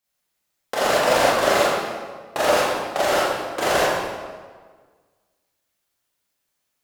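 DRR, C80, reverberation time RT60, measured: −9.0 dB, 0.0 dB, 1.6 s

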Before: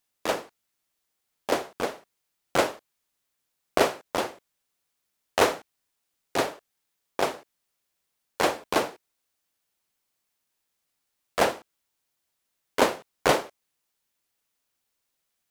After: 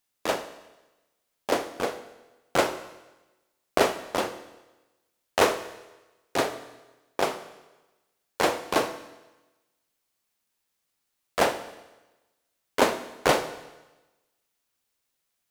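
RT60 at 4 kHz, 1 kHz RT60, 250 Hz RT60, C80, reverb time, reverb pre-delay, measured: 1.1 s, 1.1 s, 1.1 s, 14.5 dB, 1.1 s, 24 ms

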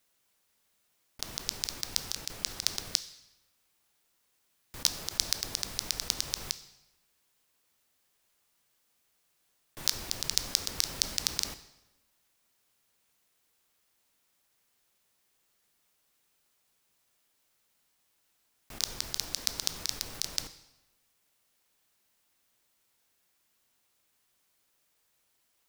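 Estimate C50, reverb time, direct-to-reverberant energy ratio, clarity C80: 13.5 dB, 1.0 s, 11.0 dB, 15.5 dB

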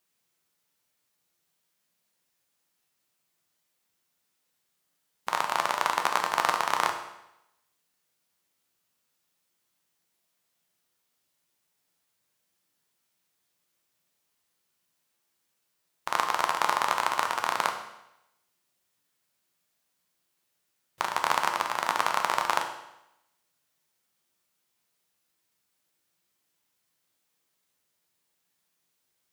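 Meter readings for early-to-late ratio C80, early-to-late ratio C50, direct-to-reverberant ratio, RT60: 10.5 dB, 8.0 dB, 4.0 dB, 0.85 s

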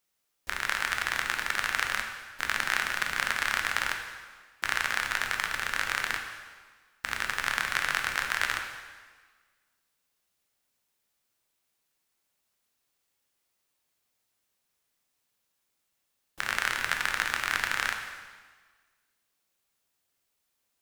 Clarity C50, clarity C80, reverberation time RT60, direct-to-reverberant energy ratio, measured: 6.0 dB, 7.5 dB, 1.5 s, 3.0 dB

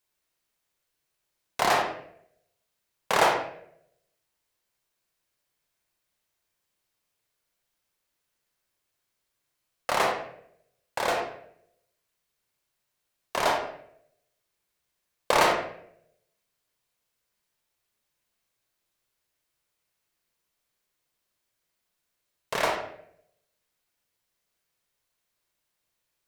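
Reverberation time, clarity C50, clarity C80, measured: 0.70 s, 4.0 dB, 7.5 dB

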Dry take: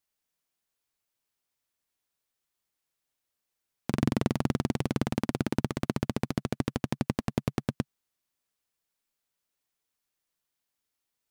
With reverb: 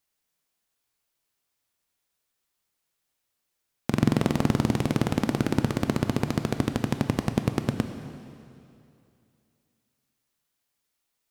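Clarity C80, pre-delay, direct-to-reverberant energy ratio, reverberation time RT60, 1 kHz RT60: 9.0 dB, 8 ms, 7.5 dB, 2.6 s, 2.6 s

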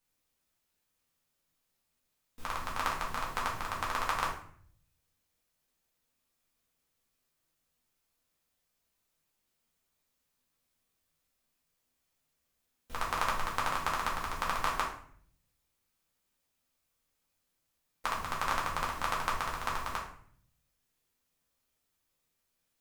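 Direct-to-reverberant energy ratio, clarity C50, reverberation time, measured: −4.5 dB, 5.0 dB, 0.55 s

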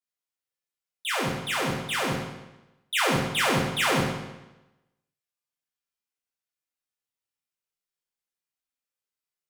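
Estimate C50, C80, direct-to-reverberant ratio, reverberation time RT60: 1.5 dB, 4.0 dB, −5.5 dB, 1.0 s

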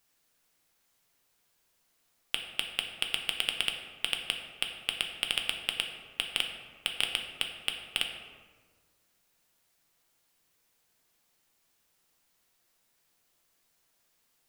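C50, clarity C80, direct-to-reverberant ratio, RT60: 5.5 dB, 7.0 dB, 2.5 dB, 1.5 s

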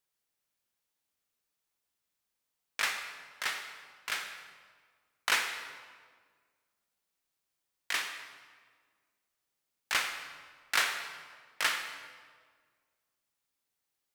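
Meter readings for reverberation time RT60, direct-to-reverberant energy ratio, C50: 1.7 s, 6.0 dB, 6.5 dB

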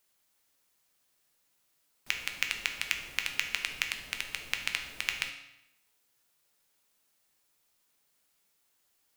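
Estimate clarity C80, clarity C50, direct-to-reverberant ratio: 10.5 dB, 8.0 dB, 4.0 dB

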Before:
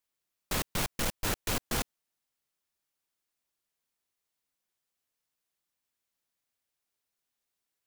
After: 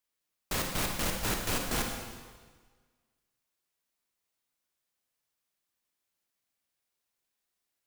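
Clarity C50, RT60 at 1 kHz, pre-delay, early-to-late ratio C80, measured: 3.0 dB, 1.5 s, 27 ms, 5.0 dB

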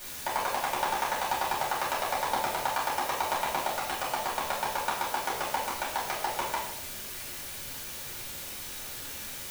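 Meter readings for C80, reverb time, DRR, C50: 6.0 dB, 0.90 s, −8.5 dB, 2.5 dB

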